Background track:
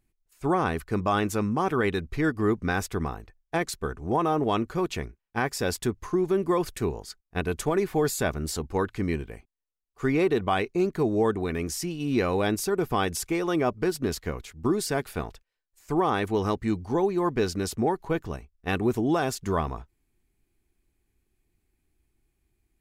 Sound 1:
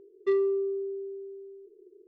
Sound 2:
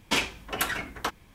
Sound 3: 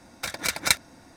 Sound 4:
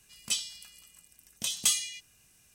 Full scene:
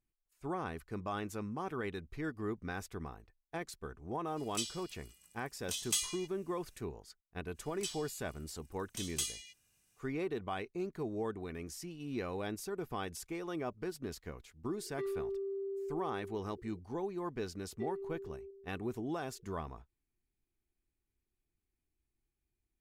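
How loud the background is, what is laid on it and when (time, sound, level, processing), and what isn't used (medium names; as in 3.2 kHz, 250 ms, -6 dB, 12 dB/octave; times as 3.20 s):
background track -14 dB
4.27 s: add 4 -7.5 dB
7.53 s: add 4 -11 dB, fades 0.05 s
14.72 s: add 1 -1 dB + compression, threshold -36 dBFS
17.53 s: add 1 -1 dB + stepped vowel filter 4.1 Hz
not used: 2, 3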